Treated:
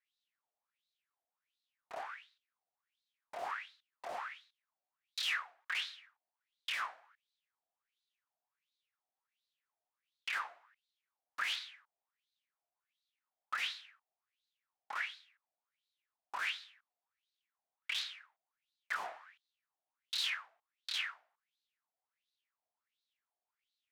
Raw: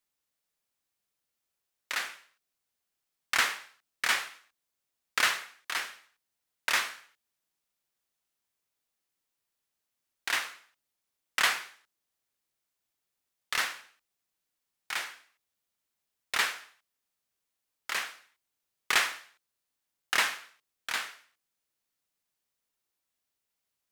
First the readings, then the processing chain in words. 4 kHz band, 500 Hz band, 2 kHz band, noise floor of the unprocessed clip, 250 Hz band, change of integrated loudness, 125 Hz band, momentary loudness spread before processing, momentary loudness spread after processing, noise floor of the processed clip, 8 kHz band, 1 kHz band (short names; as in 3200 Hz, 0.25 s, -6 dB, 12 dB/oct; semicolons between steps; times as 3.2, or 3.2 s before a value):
-6.5 dB, -6.5 dB, -10.0 dB, -85 dBFS, under -15 dB, -9.0 dB, n/a, 16 LU, 15 LU, under -85 dBFS, -16.0 dB, -8.0 dB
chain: added harmonics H 6 -23 dB, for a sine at -10.5 dBFS; wrapped overs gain 26 dB; wah 1.4 Hz 680–4000 Hz, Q 7.1; gain +9 dB